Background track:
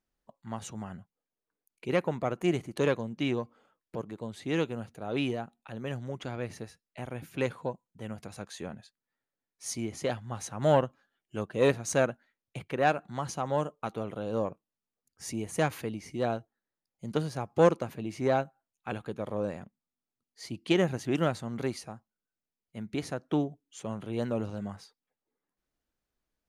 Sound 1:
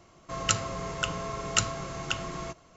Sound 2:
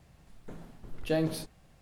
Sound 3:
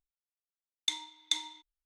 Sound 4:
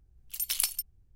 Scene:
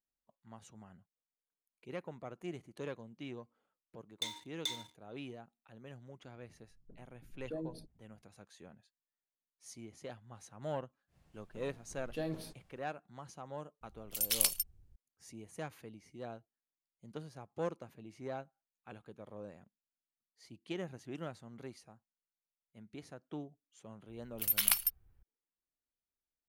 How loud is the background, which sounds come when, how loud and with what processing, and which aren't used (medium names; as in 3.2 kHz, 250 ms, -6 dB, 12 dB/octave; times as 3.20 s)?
background track -15.5 dB
3.34 s: add 3 -14 dB + waveshaping leveller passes 3
6.41 s: add 2 -13 dB + resonances exaggerated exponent 2
11.07 s: add 2 -10 dB, fades 0.10 s
13.81 s: add 4 -1 dB
24.08 s: add 4 -5 dB + FFT filter 250 Hz 0 dB, 1.4 kHz +13 dB, 7.2 kHz -3 dB, 13 kHz +8 dB
not used: 1